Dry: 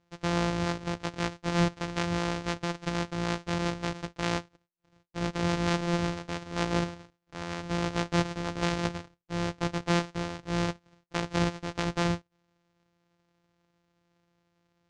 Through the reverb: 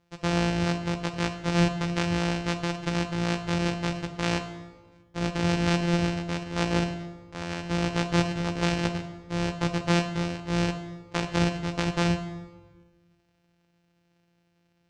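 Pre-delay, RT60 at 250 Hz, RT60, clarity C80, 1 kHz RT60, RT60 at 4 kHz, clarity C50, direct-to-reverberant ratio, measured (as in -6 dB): 16 ms, 1.6 s, 1.3 s, 11.5 dB, 1.2 s, 1.0 s, 10.0 dB, 8.0 dB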